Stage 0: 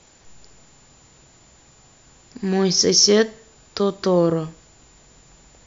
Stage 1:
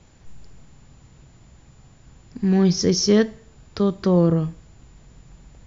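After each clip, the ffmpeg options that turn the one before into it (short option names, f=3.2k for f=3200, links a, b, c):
-af "bass=f=250:g=12,treble=f=4k:g=-6,volume=-4dB"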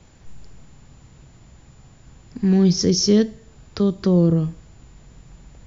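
-filter_complex "[0:a]acrossover=split=470|3000[a][b][c];[b]acompressor=threshold=-38dB:ratio=3[d];[a][d][c]amix=inputs=3:normalize=0,volume=2dB"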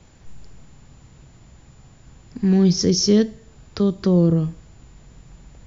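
-af anull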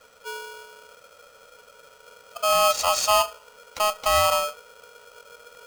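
-af "afftfilt=real='real(if(between(b,1,1008),(2*floor((b-1)/24)+1)*24-b,b),0)':imag='imag(if(between(b,1,1008),(2*floor((b-1)/24)+1)*24-b,b),0)*if(between(b,1,1008),-1,1)':win_size=2048:overlap=0.75,aeval=exprs='val(0)*sgn(sin(2*PI*950*n/s))':c=same,volume=-4.5dB"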